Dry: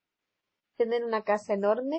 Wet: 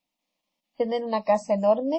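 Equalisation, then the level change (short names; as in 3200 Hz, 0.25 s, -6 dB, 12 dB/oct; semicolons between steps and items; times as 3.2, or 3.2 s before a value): fixed phaser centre 400 Hz, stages 6; +6.5 dB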